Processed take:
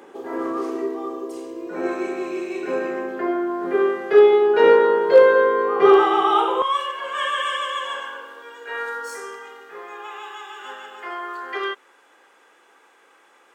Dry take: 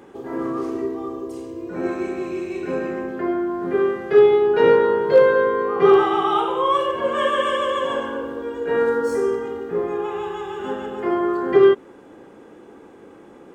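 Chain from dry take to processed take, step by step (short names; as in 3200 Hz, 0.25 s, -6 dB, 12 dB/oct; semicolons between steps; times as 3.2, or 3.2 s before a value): HPF 360 Hz 12 dB/oct, from 6.62 s 1300 Hz; gain +2.5 dB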